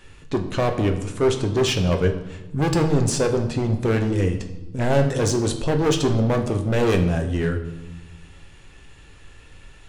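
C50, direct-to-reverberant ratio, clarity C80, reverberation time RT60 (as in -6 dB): 10.0 dB, 4.5 dB, 12.0 dB, 1.0 s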